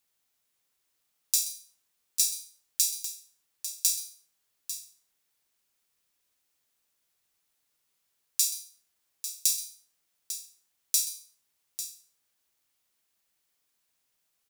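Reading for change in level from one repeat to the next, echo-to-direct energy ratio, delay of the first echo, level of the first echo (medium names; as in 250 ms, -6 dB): no regular repeats, -9.5 dB, 128 ms, -15.0 dB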